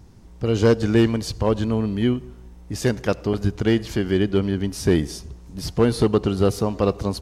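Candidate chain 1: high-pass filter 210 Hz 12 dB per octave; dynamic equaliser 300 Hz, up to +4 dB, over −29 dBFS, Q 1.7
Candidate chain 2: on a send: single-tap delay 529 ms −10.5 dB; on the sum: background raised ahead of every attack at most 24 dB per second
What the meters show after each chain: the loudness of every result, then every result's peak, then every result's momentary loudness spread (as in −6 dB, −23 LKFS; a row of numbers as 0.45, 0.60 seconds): −21.5, −19.0 LKFS; −4.0, −3.0 dBFS; 9, 7 LU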